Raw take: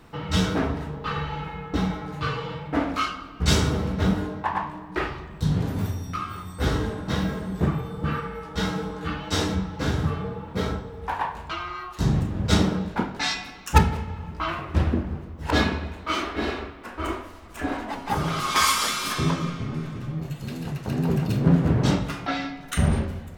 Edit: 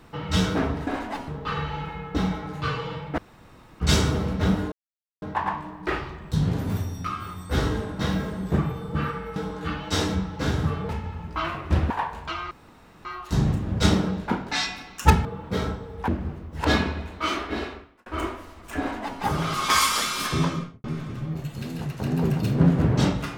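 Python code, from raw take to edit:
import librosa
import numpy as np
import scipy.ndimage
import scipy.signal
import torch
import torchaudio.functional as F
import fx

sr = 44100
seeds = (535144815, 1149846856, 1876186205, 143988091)

y = fx.studio_fade_out(x, sr, start_s=19.35, length_s=0.35)
y = fx.edit(y, sr, fx.room_tone_fill(start_s=2.77, length_s=0.62),
    fx.insert_silence(at_s=4.31, length_s=0.5),
    fx.cut(start_s=8.45, length_s=0.31),
    fx.swap(start_s=10.29, length_s=0.83, other_s=13.93, other_length_s=1.01),
    fx.insert_room_tone(at_s=11.73, length_s=0.54),
    fx.fade_out_span(start_s=16.27, length_s=0.65),
    fx.duplicate(start_s=17.65, length_s=0.41, to_s=0.87), tone=tone)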